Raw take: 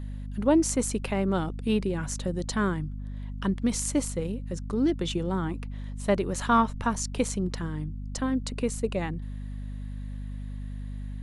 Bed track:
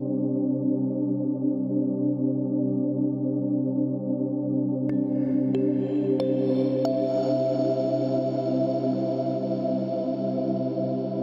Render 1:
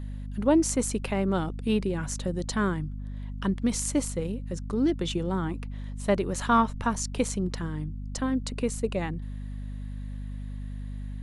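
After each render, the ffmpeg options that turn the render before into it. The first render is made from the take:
-af anull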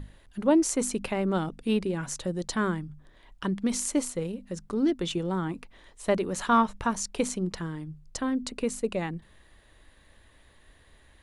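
-af "bandreject=f=50:t=h:w=6,bandreject=f=100:t=h:w=6,bandreject=f=150:t=h:w=6,bandreject=f=200:t=h:w=6,bandreject=f=250:t=h:w=6"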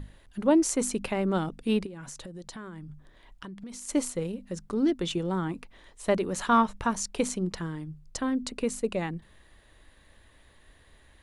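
-filter_complex "[0:a]asplit=3[s0][s1][s2];[s0]afade=t=out:st=1.85:d=0.02[s3];[s1]acompressor=threshold=0.0126:ratio=10:attack=3.2:release=140:knee=1:detection=peak,afade=t=in:st=1.85:d=0.02,afade=t=out:st=3.88:d=0.02[s4];[s2]afade=t=in:st=3.88:d=0.02[s5];[s3][s4][s5]amix=inputs=3:normalize=0"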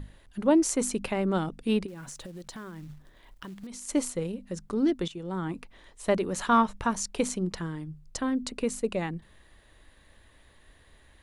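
-filter_complex "[0:a]asettb=1/sr,asplit=3[s0][s1][s2];[s0]atrim=end=1.884[s3];[s1]atrim=start=1.88:end=3.67,asetpts=PTS-STARTPTS,afade=t=in:d=0.004:c=qsin,afade=t=out:st=1.786:d=0.004:c=qsin,acrusher=bits=5:mode=log:mix=0:aa=0.000001[s4];[s2]atrim=start=3.666[s5];[s3][s4]acrossfade=d=0.004:c1=hsin:c2=qsin[s6];[s6][s5]acrossfade=d=0.004:c1=qsin:c2=hsin,asplit=2[s7][s8];[s7]atrim=end=5.08,asetpts=PTS-STARTPTS,afade=t=out:st=5.076:d=0.004:c=hsin:silence=0.177828[s9];[s8]atrim=start=5.08,asetpts=PTS-STARTPTS,afade=t=in:d=0.46:silence=0.177828[s10];[s9][s10]concat=n=2:v=0:a=1"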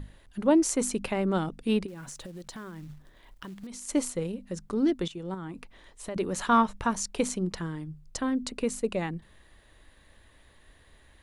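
-filter_complex "[0:a]asettb=1/sr,asplit=3[s0][s1][s2];[s0]atrim=end=5.344[s3];[s1]atrim=start=5.34:end=6.16,asetpts=PTS-STARTPTS,afade=t=in:d=0.004:c=qsin,afade=t=out:st=0.816:d=0.004:c=qsin,acompressor=threshold=0.0158:ratio=3:attack=3.2:release=140:knee=1:detection=peak[s4];[s2]atrim=start=6.156[s5];[s3][s4]acrossfade=d=0.004:c1=hsin:c2=qsin[s6];[s6][s5]acrossfade=d=0.004:c1=qsin:c2=hsin"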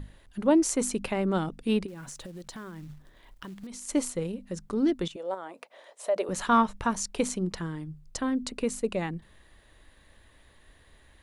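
-filter_complex "[0:a]asettb=1/sr,asplit=3[s0][s1][s2];[s0]atrim=end=5.164[s3];[s1]atrim=start=5.16:end=6.29,asetpts=PTS-STARTPTS,afade=t=in:d=0.004:c=qsin,afade=t=out:st=1.126:d=0.004:c=qsin,highpass=f=590:t=q:w=4.8[s4];[s2]atrim=start=6.286[s5];[s3][s4]acrossfade=d=0.004:c1=hsin:c2=qsin[s6];[s6][s5]acrossfade=d=0.004:c1=qsin:c2=hsin"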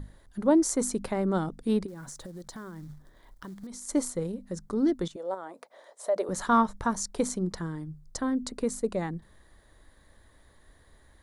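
-af "equalizer=f=2700:w=2.7:g=-14"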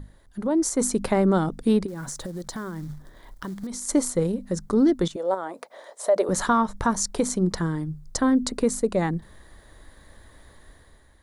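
-af "alimiter=limit=0.1:level=0:latency=1:release=232,dynaudnorm=f=130:g=9:m=2.66"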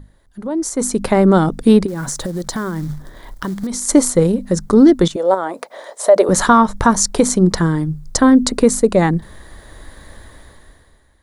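-af "dynaudnorm=f=120:g=17:m=5.62"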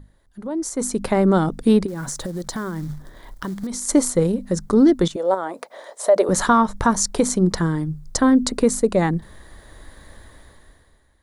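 -af "volume=0.562"

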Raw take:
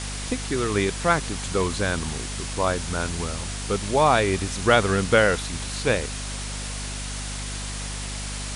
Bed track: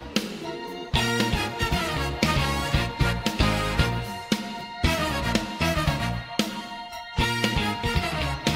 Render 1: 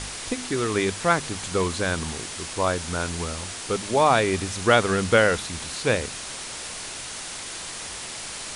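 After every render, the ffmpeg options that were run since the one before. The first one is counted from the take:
-af "bandreject=f=50:t=h:w=4,bandreject=f=100:t=h:w=4,bandreject=f=150:t=h:w=4,bandreject=f=200:t=h:w=4,bandreject=f=250:t=h:w=4"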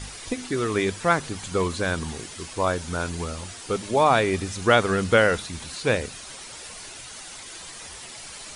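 -af "afftdn=nr=9:nf=-36"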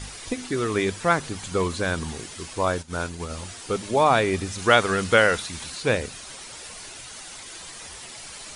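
-filter_complex "[0:a]asplit=3[s0][s1][s2];[s0]afade=t=out:st=2.81:d=0.02[s3];[s1]agate=range=0.0224:threshold=0.0447:ratio=3:release=100:detection=peak,afade=t=in:st=2.81:d=0.02,afade=t=out:st=3.29:d=0.02[s4];[s2]afade=t=in:st=3.29:d=0.02[s5];[s3][s4][s5]amix=inputs=3:normalize=0,asettb=1/sr,asplit=3[s6][s7][s8];[s6]atrim=end=4.584[s9];[s7]atrim=start=4.58:end=5.7,asetpts=PTS-STARTPTS,afade=t=in:d=0.004:c=qsin,afade=t=out:st=1.116:d=0.004:c=qsin,tiltshelf=f=630:g=-3[s10];[s8]atrim=start=5.696[s11];[s9][s10]acrossfade=d=0.004:c1=hsin:c2=qsin[s12];[s12][s11]acrossfade=d=0.004:c1=qsin:c2=hsin"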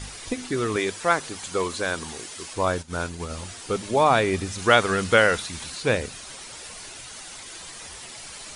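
-filter_complex "[0:a]asettb=1/sr,asplit=3[s0][s1][s2];[s0]atrim=end=0.764[s3];[s1]atrim=start=0.76:end=2.54,asetpts=PTS-STARTPTS,afade=t=in:d=0.004:c=qsin,afade=t=out:st=1.776:d=0.004:c=qsin,bass=f=250:g=-10,treble=f=4000:g=2[s4];[s2]atrim=start=2.536[s5];[s3][s4]acrossfade=d=0.004:c1=hsin:c2=qsin[s6];[s6][s5]acrossfade=d=0.004:c1=qsin:c2=hsin"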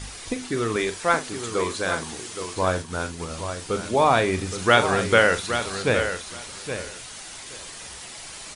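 -filter_complex "[0:a]asplit=2[s0][s1];[s1]adelay=43,volume=0.282[s2];[s0][s2]amix=inputs=2:normalize=0,aecho=1:1:819|1638:0.355|0.0568"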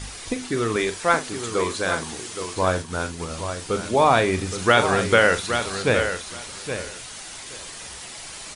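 -af "volume=1.19,alimiter=limit=0.708:level=0:latency=1"

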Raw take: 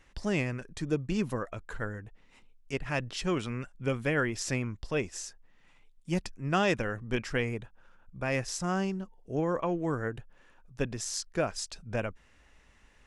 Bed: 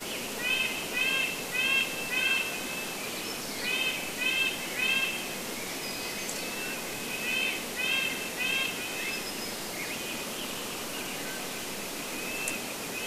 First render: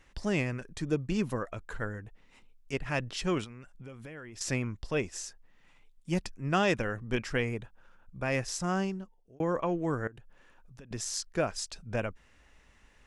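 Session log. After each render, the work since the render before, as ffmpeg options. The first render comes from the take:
-filter_complex "[0:a]asettb=1/sr,asplit=3[s0][s1][s2];[s0]atrim=end=3.444[s3];[s1]atrim=start=3.44:end=4.41,asetpts=PTS-STARTPTS,afade=t=in:d=0.004:c=qsin,afade=t=out:st=0.966:d=0.004:c=qsin,acompressor=threshold=0.00708:ratio=6:attack=3.2:release=140:knee=1:detection=peak[s4];[s2]atrim=start=4.406[s5];[s3][s4]acrossfade=d=0.004:c1=hsin:c2=qsin[s6];[s6][s5]acrossfade=d=0.004:c1=qsin:c2=hsin,asettb=1/sr,asplit=3[s7][s8][s9];[s7]atrim=end=10.074[s10];[s8]atrim=start=10.07:end=10.91,asetpts=PTS-STARTPTS,afade=t=in:d=0.004:c=qsin,afade=t=out:st=0.836:d=0.004:c=qsin,acompressor=threshold=0.00562:ratio=16:attack=3.2:release=140:knee=1:detection=peak[s11];[s9]atrim=start=10.906[s12];[s10][s11]acrossfade=d=0.004:c1=hsin:c2=qsin[s13];[s13][s12]acrossfade=d=0.004:c1=qsin:c2=hsin,asplit=2[s14][s15];[s14]atrim=end=9.4,asetpts=PTS-STARTPTS,afade=t=out:st=8.8:d=0.6[s16];[s15]atrim=start=9.4,asetpts=PTS-STARTPTS,afade=t=in:d=0.004:c=hsin[s17];[s16][s17]concat=n=2:v=0:a=1"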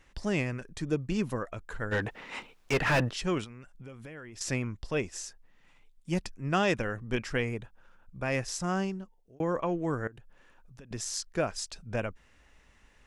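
-filter_complex "[0:a]asplit=3[s0][s1][s2];[s0]afade=t=out:st=1.91:d=0.02[s3];[s1]asplit=2[s4][s5];[s5]highpass=f=720:p=1,volume=39.8,asoftclip=type=tanh:threshold=0.15[s6];[s4][s6]amix=inputs=2:normalize=0,lowpass=f=2000:p=1,volume=0.501,afade=t=in:st=1.91:d=0.02,afade=t=out:st=3.09:d=0.02[s7];[s2]afade=t=in:st=3.09:d=0.02[s8];[s3][s7][s8]amix=inputs=3:normalize=0"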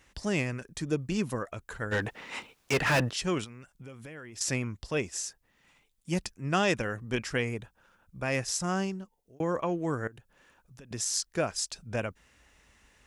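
-af "highpass=41,highshelf=f=5100:g=8"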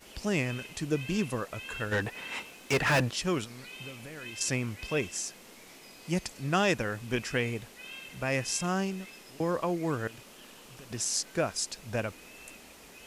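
-filter_complex "[1:a]volume=0.158[s0];[0:a][s0]amix=inputs=2:normalize=0"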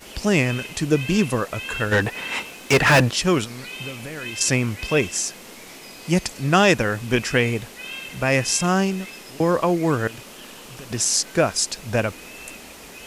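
-af "volume=3.35,alimiter=limit=0.708:level=0:latency=1"

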